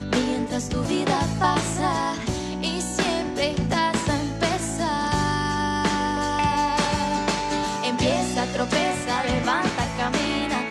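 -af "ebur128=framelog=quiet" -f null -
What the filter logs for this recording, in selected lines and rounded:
Integrated loudness:
  I:         -23.7 LUFS
  Threshold: -33.7 LUFS
Loudness range:
  LRA:         1.1 LU
  Threshold: -43.6 LUFS
  LRA low:   -24.3 LUFS
  LRA high:  -23.2 LUFS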